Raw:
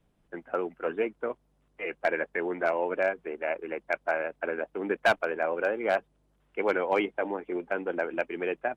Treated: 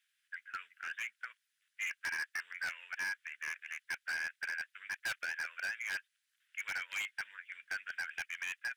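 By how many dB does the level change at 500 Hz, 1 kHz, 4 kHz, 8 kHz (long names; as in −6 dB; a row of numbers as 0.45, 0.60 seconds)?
−37.0 dB, −18.0 dB, −1.0 dB, can't be measured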